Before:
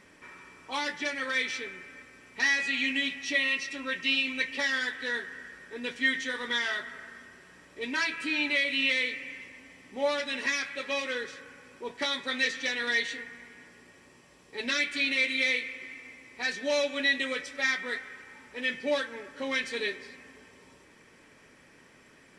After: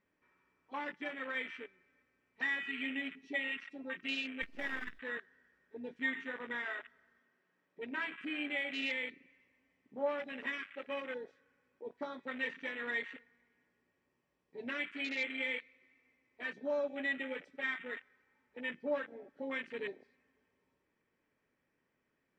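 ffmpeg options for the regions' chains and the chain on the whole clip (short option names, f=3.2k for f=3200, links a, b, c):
-filter_complex "[0:a]asettb=1/sr,asplit=3[a][b][c];[a]atrim=end=4.424[d];[b]atrim=start=4.42:end=4.99,asetpts=PTS-STARTPTS,afade=t=in:d=0.004:c=qsin,afade=t=out:st=0.566:d=0.004:c=qsin,bass=f=250:g=4,treble=f=4k:g=5,acrusher=bits=5:dc=4:mix=0:aa=0.000001,asoftclip=type=hard:threshold=-20dB[e];[c]atrim=start=4.986[f];[d][e]acrossfade=d=0.004:c1=hsin:c2=qsin[g];[g][f]acrossfade=d=0.004:c1=qsin:c2=hsin,asettb=1/sr,asplit=3[h][i][j];[h]atrim=end=7.194[k];[i]atrim=start=7.19:end=8.17,asetpts=PTS-STARTPTS,afade=t=in:d=0.004:c=qsin,afade=t=out:st=0.976:d=0.004:c=qsin,highpass=150,lowpass=6.7k,bandreject=f=50:t=h:w=6,bandreject=f=100:t=h:w=6,bandreject=f=150:t=h:w=6,bandreject=f=200:t=h:w=6,bandreject=f=250:t=h:w=6,bandreject=f=300:t=h:w=6,bandreject=f=350:t=h:w=6,bandreject=f=400:t=h:w=6[l];[j]atrim=start=8.166[m];[k][l]acrossfade=d=0.004:c1=hsin:c2=qsin[n];[n][m]acrossfade=d=0.004:c1=qsin:c2=hsin,lowpass=f=2k:p=1,afwtdn=0.0178,volume=-6dB"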